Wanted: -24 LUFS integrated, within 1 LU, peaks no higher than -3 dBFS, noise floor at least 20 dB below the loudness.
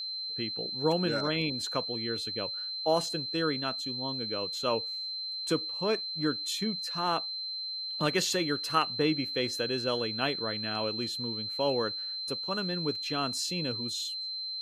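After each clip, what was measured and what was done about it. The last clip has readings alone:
steady tone 4100 Hz; tone level -34 dBFS; loudness -30.5 LUFS; peak -12.5 dBFS; loudness target -24.0 LUFS
-> notch 4100 Hz, Q 30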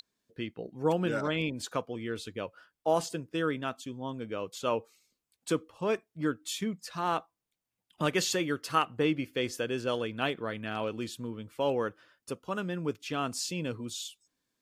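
steady tone none; loudness -33.0 LUFS; peak -13.0 dBFS; loudness target -24.0 LUFS
-> gain +9 dB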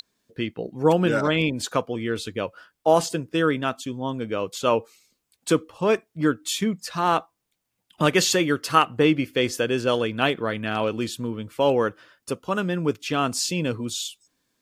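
loudness -24.0 LUFS; peak -4.0 dBFS; noise floor -79 dBFS

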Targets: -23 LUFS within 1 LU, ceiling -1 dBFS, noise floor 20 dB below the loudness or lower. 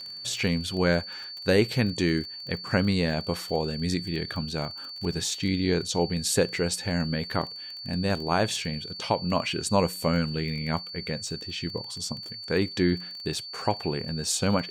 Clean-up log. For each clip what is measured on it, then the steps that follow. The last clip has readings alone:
ticks 21/s; steady tone 4500 Hz; tone level -37 dBFS; loudness -27.5 LUFS; peak -9.0 dBFS; loudness target -23.0 LUFS
-> de-click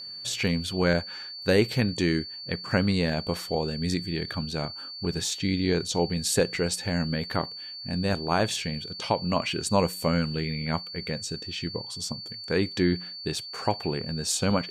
ticks 0.068/s; steady tone 4500 Hz; tone level -37 dBFS
-> notch 4500 Hz, Q 30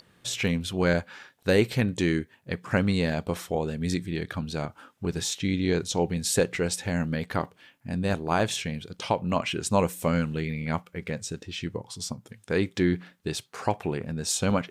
steady tone none; loudness -28.0 LUFS; peak -9.0 dBFS; loudness target -23.0 LUFS
-> gain +5 dB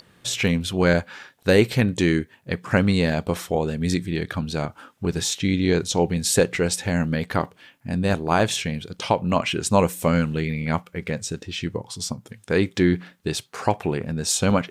loudness -23.0 LUFS; peak -4.0 dBFS; noise floor -58 dBFS

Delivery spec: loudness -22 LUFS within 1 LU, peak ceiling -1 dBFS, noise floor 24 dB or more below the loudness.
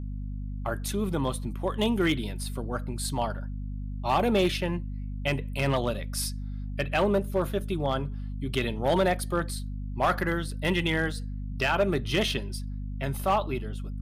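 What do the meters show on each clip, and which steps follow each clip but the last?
clipped 0.4%; flat tops at -17.0 dBFS; hum 50 Hz; harmonics up to 250 Hz; hum level -32 dBFS; loudness -29.0 LUFS; peak -17.0 dBFS; loudness target -22.0 LUFS
-> clip repair -17 dBFS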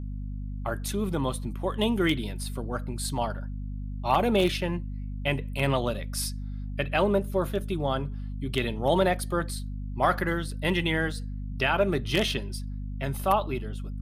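clipped 0.0%; hum 50 Hz; harmonics up to 250 Hz; hum level -32 dBFS
-> notches 50/100/150/200/250 Hz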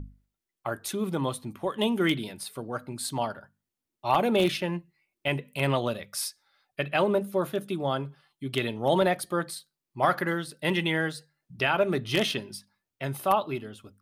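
hum none; loudness -28.5 LUFS; peak -8.5 dBFS; loudness target -22.0 LUFS
-> gain +6.5 dB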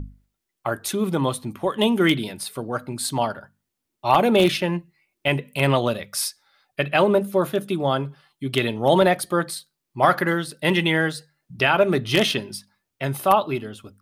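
loudness -22.0 LUFS; peak -2.0 dBFS; noise floor -81 dBFS

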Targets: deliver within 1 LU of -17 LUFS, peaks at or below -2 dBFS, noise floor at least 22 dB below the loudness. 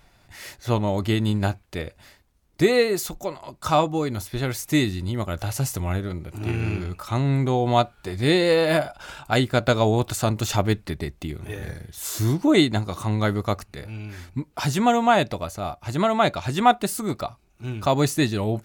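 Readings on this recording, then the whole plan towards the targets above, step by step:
loudness -23.5 LUFS; peak -4.0 dBFS; loudness target -17.0 LUFS
-> gain +6.5 dB; limiter -2 dBFS

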